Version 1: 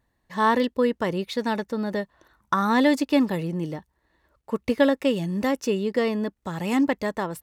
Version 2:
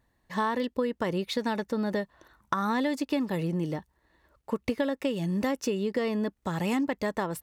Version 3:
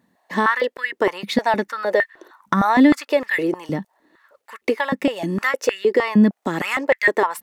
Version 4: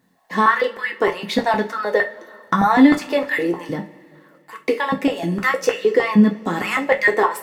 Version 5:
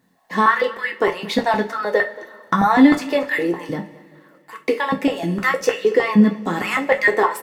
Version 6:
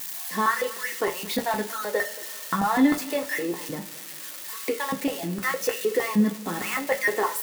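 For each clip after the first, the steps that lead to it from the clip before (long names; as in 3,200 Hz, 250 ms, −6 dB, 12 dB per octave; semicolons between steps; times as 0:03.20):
downward compressor 6 to 1, threshold −26 dBFS, peak gain reduction 12 dB; level +1 dB
dynamic equaliser 2,000 Hz, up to +7 dB, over −50 dBFS, Q 2.2; high-pass on a step sequencer 6.5 Hz 200–1,800 Hz; level +6 dB
bit-depth reduction 12 bits, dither none; convolution reverb, pre-delay 3 ms, DRR 1.5 dB; level −1 dB
single-tap delay 228 ms −20.5 dB
spike at every zero crossing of −17 dBFS; level −8 dB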